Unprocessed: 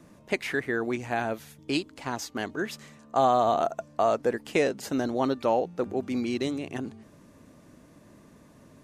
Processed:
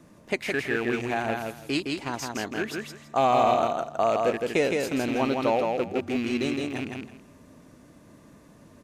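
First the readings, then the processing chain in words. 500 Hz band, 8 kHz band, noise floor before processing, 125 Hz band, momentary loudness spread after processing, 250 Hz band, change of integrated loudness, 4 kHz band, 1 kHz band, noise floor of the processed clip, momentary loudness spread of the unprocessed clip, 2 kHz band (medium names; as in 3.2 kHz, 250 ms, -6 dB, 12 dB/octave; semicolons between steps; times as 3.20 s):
+1.5 dB, +2.0 dB, -55 dBFS, +2.0 dB, 10 LU, +1.5 dB, +1.5 dB, +3.0 dB, +1.5 dB, -53 dBFS, 11 LU, +3.0 dB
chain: rattle on loud lows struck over -34 dBFS, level -26 dBFS; on a send: feedback delay 164 ms, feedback 20%, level -3.5 dB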